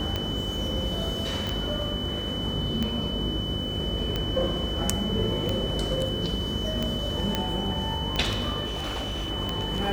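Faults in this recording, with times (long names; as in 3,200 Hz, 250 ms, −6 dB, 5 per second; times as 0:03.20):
mains buzz 50 Hz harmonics 12 −34 dBFS
scratch tick 45 rpm −14 dBFS
whistle 3,000 Hz −32 dBFS
0:01.47: click
0:07.35: click −10 dBFS
0:08.65–0:09.31: clipping −27 dBFS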